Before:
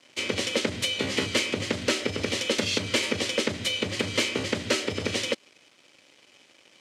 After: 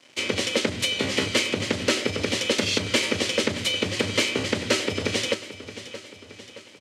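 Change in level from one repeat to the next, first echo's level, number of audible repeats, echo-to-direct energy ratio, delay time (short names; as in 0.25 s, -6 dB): -5.5 dB, -14.0 dB, 4, -12.5 dB, 0.622 s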